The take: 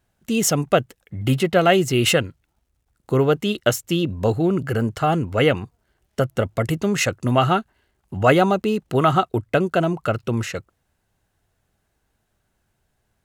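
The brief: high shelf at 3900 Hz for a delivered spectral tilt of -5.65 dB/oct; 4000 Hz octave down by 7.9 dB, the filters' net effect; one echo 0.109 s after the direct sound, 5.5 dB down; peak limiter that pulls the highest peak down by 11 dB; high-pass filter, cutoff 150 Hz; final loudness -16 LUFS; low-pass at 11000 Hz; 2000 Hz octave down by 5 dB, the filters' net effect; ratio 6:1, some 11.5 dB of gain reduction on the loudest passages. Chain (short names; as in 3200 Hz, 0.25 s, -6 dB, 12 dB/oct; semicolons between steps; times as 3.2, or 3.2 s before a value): HPF 150 Hz; LPF 11000 Hz; bell 2000 Hz -3.5 dB; high shelf 3900 Hz -7 dB; bell 4000 Hz -6 dB; compressor 6:1, threshold -25 dBFS; limiter -23.5 dBFS; echo 0.109 s -5.5 dB; gain +17.5 dB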